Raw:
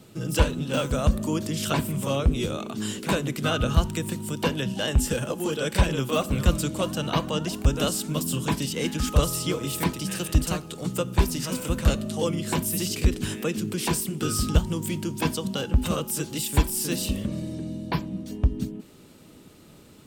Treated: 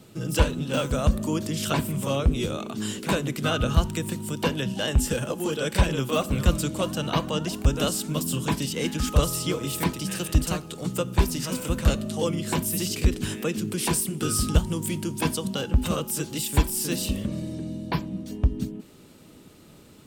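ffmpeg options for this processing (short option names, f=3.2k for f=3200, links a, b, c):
-filter_complex "[0:a]asettb=1/sr,asplit=3[a][b][c];[a]atrim=end=13.714[d];[b]atrim=start=13.71:end=15.5,asetpts=PTS-STARTPTS,afade=t=in:d=0.004:c=qsin,afade=t=out:st=1.786:d=0.004:c=qsin,equalizer=f=10k:w=2.2:g=6[e];[c]atrim=start=15.496[f];[d][e]acrossfade=d=0.004:c1=hsin:c2=qsin[g];[g][f]acrossfade=d=0.004:c1=qsin:c2=hsin"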